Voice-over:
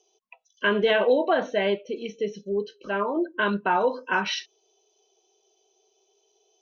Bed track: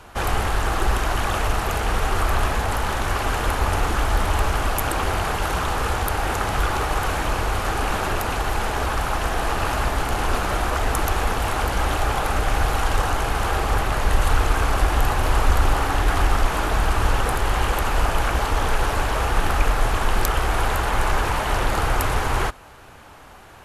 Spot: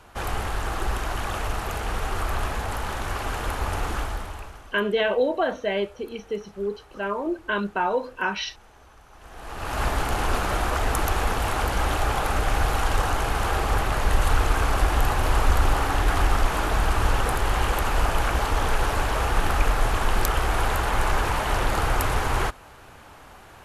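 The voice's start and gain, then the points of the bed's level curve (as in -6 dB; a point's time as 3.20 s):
4.10 s, -1.5 dB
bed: 3.98 s -6 dB
4.83 s -28.5 dB
9.09 s -28.5 dB
9.83 s -2 dB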